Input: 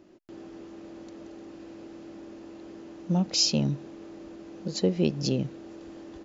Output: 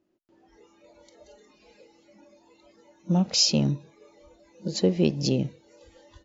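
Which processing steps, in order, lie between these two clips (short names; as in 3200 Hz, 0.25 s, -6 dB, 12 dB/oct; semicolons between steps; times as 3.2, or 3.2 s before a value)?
spectral noise reduction 20 dB; 1.26–1.81 comb 4.8 ms, depth 93%; gain +2.5 dB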